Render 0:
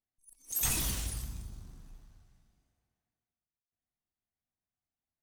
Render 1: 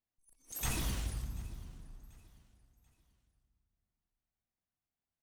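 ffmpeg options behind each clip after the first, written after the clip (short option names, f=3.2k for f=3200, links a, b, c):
-af "highshelf=f=4.1k:g=-11,aecho=1:1:737|1474|2211:0.0794|0.0286|0.0103"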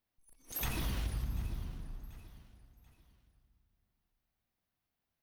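-af "acompressor=threshold=-38dB:ratio=10,equalizer=f=7.6k:t=o:w=0.69:g=-12,volume=7dB"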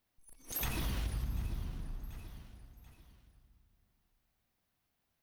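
-af "acompressor=threshold=-48dB:ratio=1.5,volume=5.5dB"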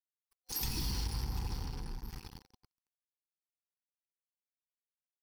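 -filter_complex "[0:a]acrossover=split=440|3000[a][b][c];[b]acompressor=threshold=-54dB:ratio=6[d];[a][d][c]amix=inputs=3:normalize=0,acrusher=bits=6:mix=0:aa=0.5,superequalizer=8b=0.316:9b=2:14b=3.55"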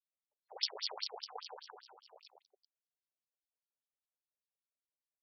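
-filter_complex "[0:a]acrossover=split=820|3200[a][b][c];[b]acrusher=samples=25:mix=1:aa=0.000001:lfo=1:lforange=15:lforate=0.45[d];[a][d][c]amix=inputs=3:normalize=0,aeval=exprs='0.0668*(cos(1*acos(clip(val(0)/0.0668,-1,1)))-cos(1*PI/2))+0.0188*(cos(3*acos(clip(val(0)/0.0668,-1,1)))-cos(3*PI/2))':c=same,afftfilt=real='re*between(b*sr/1024,530*pow(4200/530,0.5+0.5*sin(2*PI*5*pts/sr))/1.41,530*pow(4200/530,0.5+0.5*sin(2*PI*5*pts/sr))*1.41)':imag='im*between(b*sr/1024,530*pow(4200/530,0.5+0.5*sin(2*PI*5*pts/sr))/1.41,530*pow(4200/530,0.5+0.5*sin(2*PI*5*pts/sr))*1.41)':win_size=1024:overlap=0.75,volume=17.5dB"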